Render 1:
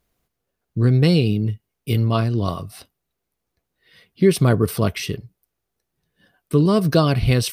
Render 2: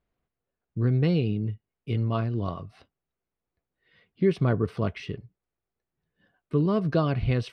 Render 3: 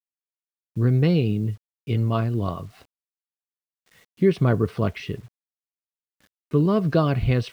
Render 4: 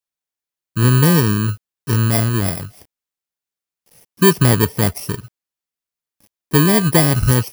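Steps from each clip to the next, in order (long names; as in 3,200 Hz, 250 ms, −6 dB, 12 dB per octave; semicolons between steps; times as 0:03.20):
low-pass filter 2,600 Hz 12 dB per octave; level −7.5 dB
bit-depth reduction 10 bits, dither none; level +4 dB
samples in bit-reversed order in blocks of 32 samples; level +6.5 dB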